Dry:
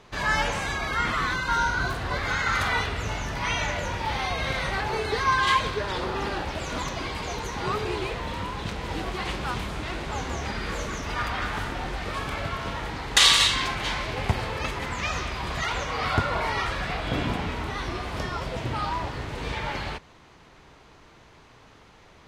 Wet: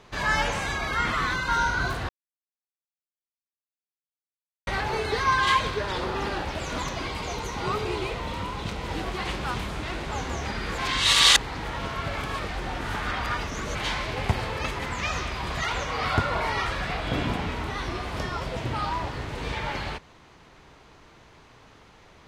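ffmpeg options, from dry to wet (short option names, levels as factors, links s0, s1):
-filter_complex "[0:a]asettb=1/sr,asplit=3[s0][s1][s2];[s0]atrim=end=7.084[s3];[s1]atrim=start=7.08:end=8.86,asetpts=PTS-STARTPTS,afade=t=in:d=0.004:c=qsin,afade=t=out:st=1.776:d=0.004:c=qsin,bandreject=f=1700:w=10[s4];[s2]atrim=start=8.856[s5];[s3][s4]acrossfade=d=0.004:c1=hsin:c2=qsin[s6];[s6][s5]acrossfade=d=0.004:c1=qsin:c2=hsin,asplit=5[s7][s8][s9][s10][s11];[s7]atrim=end=2.09,asetpts=PTS-STARTPTS,afade=t=out:st=2.086:d=0.004:c=hsin[s12];[s8]atrim=start=2.09:end=4.67,asetpts=PTS-STARTPTS,volume=0[s13];[s9]atrim=start=4.67:end=10.782,asetpts=PTS-STARTPTS,afade=t=in:d=0.004:c=hsin[s14];[s10]atrim=start=10.778:end=13.752,asetpts=PTS-STARTPTS,areverse[s15];[s11]atrim=start=13.748[s16];[s12][s13][s14]concat=n=3:v=0:a=1[s17];[s17][s15]acrossfade=d=0.004:c1=hsin:c2=hsin[s18];[s18][s16]acrossfade=d=0.004:c1=hsin:c2=hsin"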